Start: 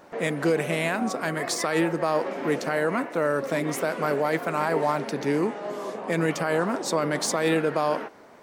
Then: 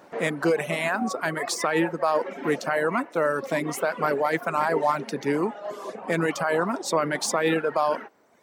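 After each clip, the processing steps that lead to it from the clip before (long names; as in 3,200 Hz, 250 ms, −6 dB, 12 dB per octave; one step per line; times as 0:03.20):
reverb reduction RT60 1.1 s
high-pass filter 96 Hz
dynamic equaliser 1,100 Hz, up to +4 dB, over −36 dBFS, Q 0.74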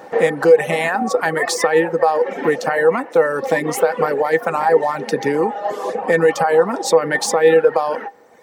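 downward compressor, threshold −26 dBFS, peak gain reduction 9 dB
hollow resonant body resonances 490/800/1,800 Hz, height 15 dB, ringing for 95 ms
level +8.5 dB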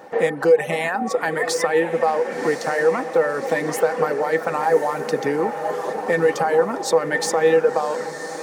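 feedback delay with all-pass diffusion 1,103 ms, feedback 56%, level −10.5 dB
level −4 dB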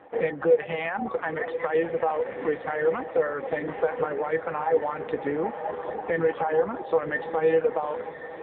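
level −5 dB
AMR narrowband 5.9 kbit/s 8,000 Hz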